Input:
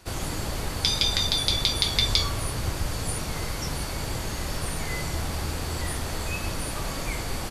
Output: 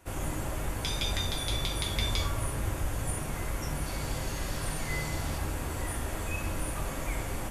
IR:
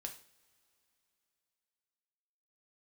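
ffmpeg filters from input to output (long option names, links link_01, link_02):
-filter_complex "[0:a]asetnsamples=nb_out_samples=441:pad=0,asendcmd='3.86 equalizer g -4;5.38 equalizer g -12',equalizer=frequency=4500:width=1.9:gain=-14[link_01];[1:a]atrim=start_sample=2205[link_02];[link_01][link_02]afir=irnorm=-1:irlink=0"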